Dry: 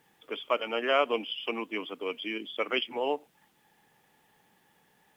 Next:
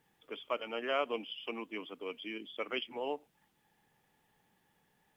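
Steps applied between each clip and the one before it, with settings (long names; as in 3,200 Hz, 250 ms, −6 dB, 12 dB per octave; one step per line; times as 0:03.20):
low-shelf EQ 120 Hz +10 dB
level −8 dB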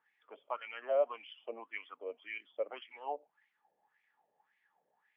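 LFO wah 1.8 Hz 550–2,200 Hz, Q 6
level +8 dB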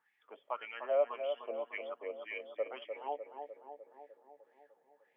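feedback echo with a low-pass in the loop 301 ms, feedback 69%, low-pass 1,200 Hz, level −6 dB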